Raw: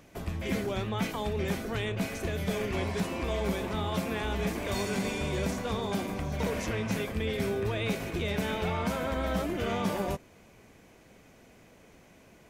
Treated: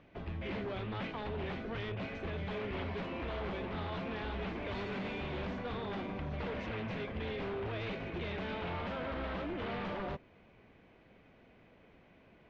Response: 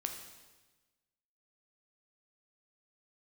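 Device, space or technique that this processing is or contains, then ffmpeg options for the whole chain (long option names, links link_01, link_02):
synthesiser wavefolder: -af "aeval=exprs='0.0398*(abs(mod(val(0)/0.0398+3,4)-2)-1)':channel_layout=same,lowpass=frequency=3500:width=0.5412,lowpass=frequency=3500:width=1.3066,volume=-5dB"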